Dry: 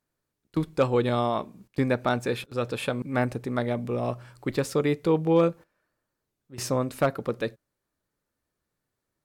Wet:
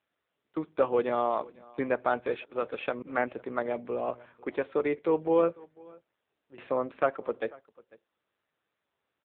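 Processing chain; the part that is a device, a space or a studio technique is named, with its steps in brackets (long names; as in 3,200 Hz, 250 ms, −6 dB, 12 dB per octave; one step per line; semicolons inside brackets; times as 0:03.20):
satellite phone (band-pass filter 380–3,000 Hz; single-tap delay 495 ms −23.5 dB; AMR narrowband 6.7 kbit/s 8,000 Hz)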